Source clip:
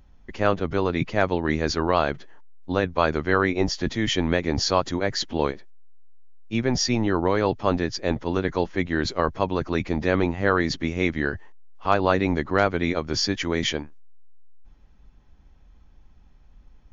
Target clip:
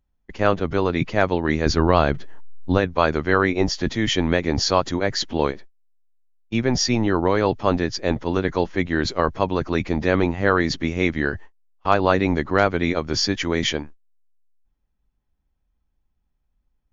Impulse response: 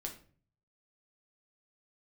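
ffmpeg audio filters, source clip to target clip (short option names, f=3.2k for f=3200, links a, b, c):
-filter_complex "[0:a]asettb=1/sr,asplit=3[a][b][c];[a]atrim=end=1.664[d];[b]atrim=start=1.66:end=2.78,asetpts=PTS-STARTPTS,afade=t=in:d=0.004:c=qsin,afade=t=out:st=1.116:d=0.004:c=qsin,lowshelf=f=230:g=9[e];[c]atrim=start=2.776[f];[d][e]acrossfade=d=0.004:c1=hsin:c2=qsin[g];[g][f]acrossfade=d=0.004:c1=qsin:c2=hsin,agate=range=-22dB:threshold=-37dB:ratio=16:detection=peak,volume=2.5dB"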